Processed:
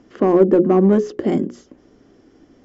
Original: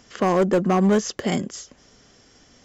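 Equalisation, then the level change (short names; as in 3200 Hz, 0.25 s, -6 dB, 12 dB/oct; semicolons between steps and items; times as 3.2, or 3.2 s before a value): LPF 1100 Hz 6 dB/oct; bell 320 Hz +14 dB 0.83 oct; notches 60/120/180/240/300/360/420/480/540 Hz; 0.0 dB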